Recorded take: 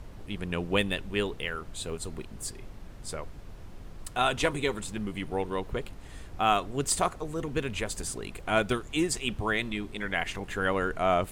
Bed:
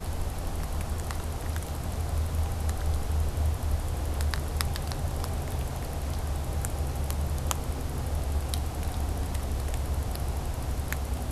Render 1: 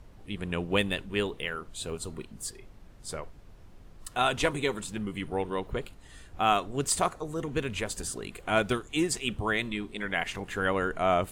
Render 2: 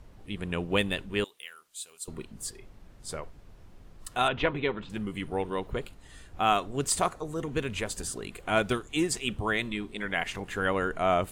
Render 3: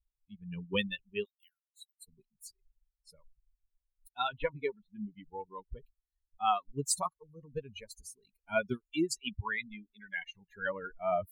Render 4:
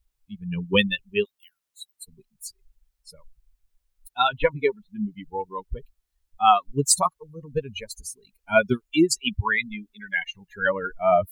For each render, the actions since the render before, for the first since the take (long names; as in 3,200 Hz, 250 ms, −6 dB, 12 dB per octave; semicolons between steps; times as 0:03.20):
noise reduction from a noise print 7 dB
0:01.24–0:02.08: first difference; 0:04.28–0:04.90: low-pass filter 3,400 Hz 24 dB per octave
spectral dynamics exaggerated over time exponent 3; reversed playback; upward compression, threshold −54 dBFS; reversed playback
level +12 dB